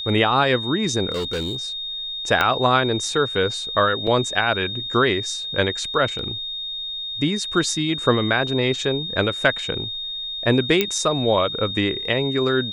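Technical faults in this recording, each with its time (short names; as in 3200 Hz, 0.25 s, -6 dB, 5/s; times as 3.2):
tone 3700 Hz -27 dBFS
1.11–1.65 clipped -21.5 dBFS
2.41 pop -6 dBFS
4.07 gap 3.9 ms
6.19 gap 2 ms
10.81 pop -4 dBFS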